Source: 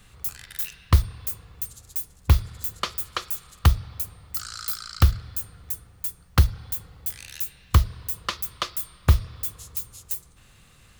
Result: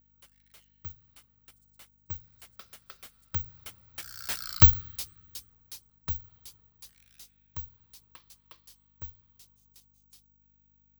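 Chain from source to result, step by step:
source passing by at 0:04.54, 29 m/s, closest 5.3 metres
mains hum 50 Hz, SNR 32 dB
time-frequency box erased 0:04.67–0:05.50, 410–1,100 Hz
bad sample-rate conversion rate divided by 2×, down none, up zero stuff
level −2 dB

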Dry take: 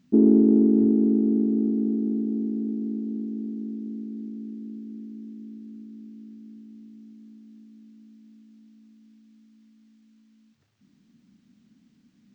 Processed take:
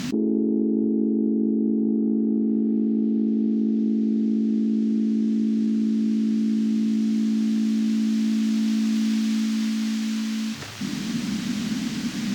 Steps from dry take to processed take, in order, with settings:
hum removal 93.1 Hz, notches 31
treble cut that deepens with the level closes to 690 Hz, closed at −20.5 dBFS
low-shelf EQ 390 Hz −9.5 dB
envelope flattener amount 100%

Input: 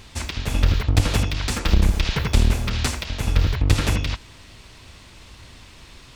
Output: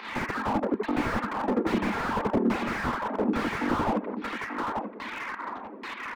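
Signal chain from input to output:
reverb reduction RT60 1 s
Butterworth high-pass 200 Hz 96 dB per octave
flat-topped bell 1,400 Hz +11.5 dB
in parallel at 0 dB: downward compressor, threshold −37 dBFS, peak gain reduction 20.5 dB
on the sum: auto-filter low-pass saw down 1.2 Hz 330–4,600 Hz
fake sidechain pumping 101 BPM, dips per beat 1, −12 dB, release 152 ms
hard clipping −18 dBFS, distortion −6 dB
head-to-tape spacing loss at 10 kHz 24 dB
on a send: repeating echo 886 ms, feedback 23%, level −9 dB
on the sum: slew-rate limiting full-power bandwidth 26 Hz
level +4.5 dB

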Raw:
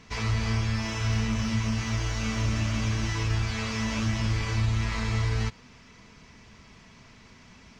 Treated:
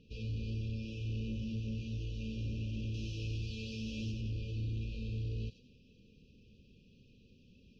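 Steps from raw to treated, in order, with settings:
0:02.94–0:04.12: high-shelf EQ 3,600 Hz +12 dB
soft clipping −24.5 dBFS, distortion −14 dB
linear-phase brick-wall band-stop 580–2,400 Hz
high-frequency loss of the air 260 metres
delay with a high-pass on its return 94 ms, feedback 37%, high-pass 4,200 Hz, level −5 dB
level −7.5 dB

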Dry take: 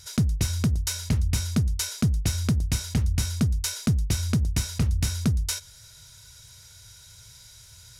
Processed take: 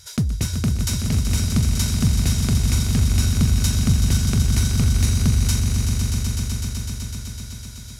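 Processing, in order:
echo that builds up and dies away 126 ms, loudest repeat 5, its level −8 dB
level +1.5 dB

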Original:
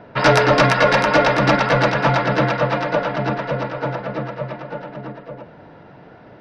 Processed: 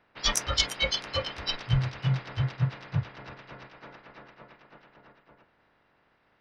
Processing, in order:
ceiling on every frequency bin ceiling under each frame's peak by 19 dB
0:01.67–0:03.69: parametric band 110 Hz +14 dB 0.48 octaves
noise reduction from a noise print of the clip's start 24 dB

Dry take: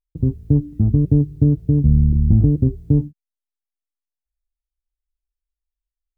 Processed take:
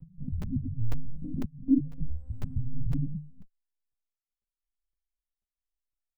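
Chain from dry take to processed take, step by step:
spectrum averaged block by block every 200 ms
single-tap delay 262 ms −5.5 dB
spectral peaks only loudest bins 2
brickwall limiter −17.5 dBFS, peak gain reduction 6.5 dB
0:01.40–0:02.00: Chebyshev band-pass filter 180–660 Hz, order 3
dynamic equaliser 350 Hz, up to +6 dB, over −35 dBFS, Q 0.87
one-pitch LPC vocoder at 8 kHz 260 Hz
regular buffer underruns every 0.50 s, samples 512, zero, from 0:00.42
barber-pole flanger 3.7 ms +1 Hz

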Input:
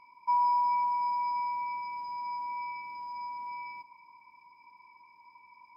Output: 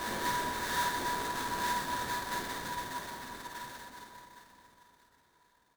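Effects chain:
each half-wave held at its own peak
noise gate −43 dBFS, range −24 dB
extreme stretch with random phases 22×, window 0.25 s, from 0:03.71
repeating echo 633 ms, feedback 41%, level −16 dB
sample-rate reduction 2,700 Hz, jitter 20%
pitch vibrato 12 Hz 9.2 cents
reverse bouncing-ball delay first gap 50 ms, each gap 1.5×, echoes 5
level +3 dB

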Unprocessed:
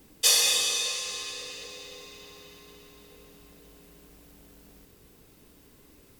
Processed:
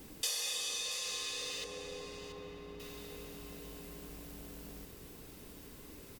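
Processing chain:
0:01.64–0:02.80: low-pass filter 1,000 Hz 6 dB per octave
downward compressor 4 to 1, threshold −42 dBFS, peak gain reduction 20.5 dB
single-tap delay 681 ms −12 dB
level +4 dB

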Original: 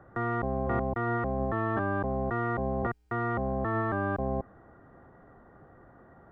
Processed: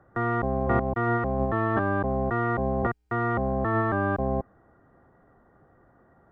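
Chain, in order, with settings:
0:00.60–0:02.04: transient designer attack +2 dB, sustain −7 dB
expander for the loud parts 1.5 to 1, over −47 dBFS
level +6 dB

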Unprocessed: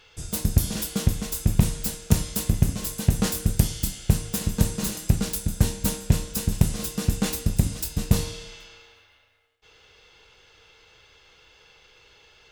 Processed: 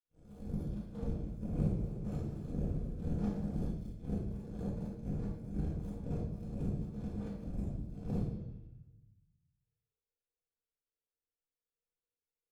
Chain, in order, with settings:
random phases in long frames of 200 ms
low-shelf EQ 260 Hz −10 dB
downward compressor 1.5 to 1, threshold −38 dBFS, peak gain reduction 6.5 dB
moving average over 46 samples
power curve on the samples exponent 2
rectangular room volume 350 cubic metres, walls mixed, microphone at 1.9 metres
0:01.39–0:03.71: feedback echo with a swinging delay time 120 ms, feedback 77%, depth 122 cents, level −11 dB

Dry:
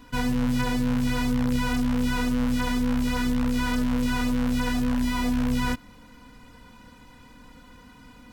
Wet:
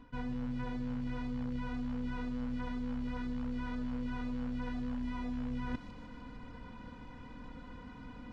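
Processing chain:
reversed playback
downward compressor 6 to 1, threshold −37 dBFS, peak gain reduction 15.5 dB
reversed playback
head-to-tape spacing loss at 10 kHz 29 dB
delay with a high-pass on its return 151 ms, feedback 64%, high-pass 4,000 Hz, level −3 dB
level +2 dB

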